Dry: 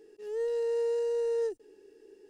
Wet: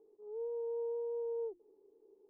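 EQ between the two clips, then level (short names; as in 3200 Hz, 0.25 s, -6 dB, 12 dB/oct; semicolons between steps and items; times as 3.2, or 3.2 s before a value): elliptic low-pass 1100 Hz, stop band 40 dB; low shelf 440 Hz -8.5 dB; notches 50/100/150/200/250/300/350 Hz; -4.5 dB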